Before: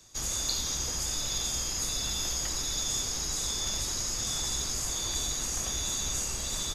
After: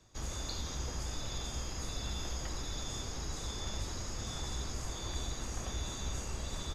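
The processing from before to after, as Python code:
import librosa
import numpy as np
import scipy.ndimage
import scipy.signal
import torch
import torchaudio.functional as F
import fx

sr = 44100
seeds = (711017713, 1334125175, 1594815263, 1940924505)

y = fx.lowpass(x, sr, hz=1500.0, slope=6)
y = fx.peak_eq(y, sr, hz=74.0, db=4.5, octaves=0.8)
y = F.gain(torch.from_numpy(y), -1.5).numpy()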